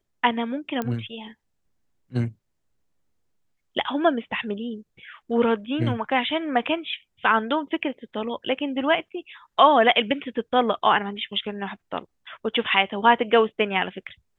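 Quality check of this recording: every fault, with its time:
0:00.82: click −15 dBFS

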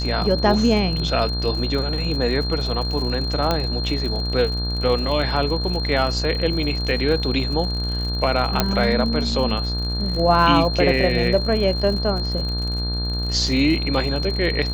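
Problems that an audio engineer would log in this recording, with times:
mains buzz 60 Hz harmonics 29 −25 dBFS
surface crackle 68 per second −28 dBFS
whistle 4,200 Hz −27 dBFS
0:03.51: click −7 dBFS
0:08.60: click −2 dBFS

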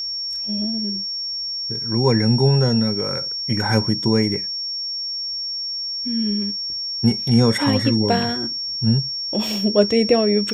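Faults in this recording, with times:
whistle 5,500 Hz −24 dBFS

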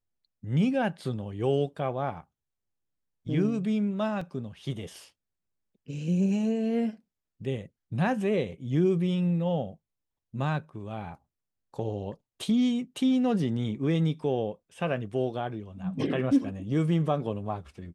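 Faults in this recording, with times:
0:04.21: drop-out 3.9 ms

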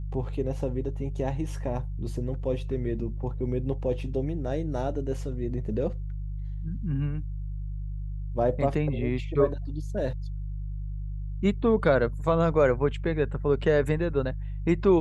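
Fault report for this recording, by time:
mains hum 50 Hz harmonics 3 −33 dBFS

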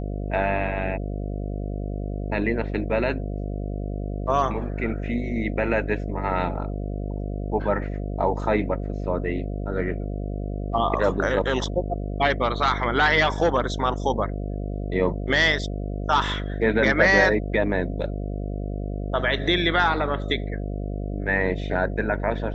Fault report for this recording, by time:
mains buzz 50 Hz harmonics 14 −29 dBFS

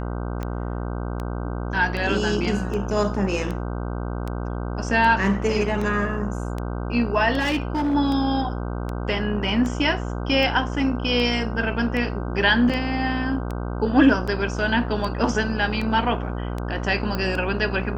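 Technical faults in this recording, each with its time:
mains buzz 60 Hz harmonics 26 −28 dBFS
scratch tick 78 rpm −17 dBFS
0:07.39–0:07.95: clipping −19 dBFS
0:12.69–0:12.70: drop-out 5.9 ms
0:17.15: click −14 dBFS

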